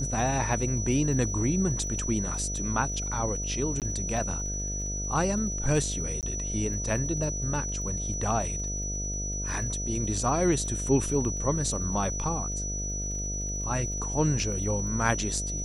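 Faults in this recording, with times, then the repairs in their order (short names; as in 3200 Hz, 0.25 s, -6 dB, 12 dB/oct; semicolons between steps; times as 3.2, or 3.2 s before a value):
buzz 50 Hz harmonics 14 -34 dBFS
crackle 32/s -39 dBFS
tone 5900 Hz -33 dBFS
3.8–3.82 gap 18 ms
6.21–6.23 gap 18 ms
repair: de-click; de-hum 50 Hz, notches 14; notch 5900 Hz, Q 30; interpolate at 3.8, 18 ms; interpolate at 6.21, 18 ms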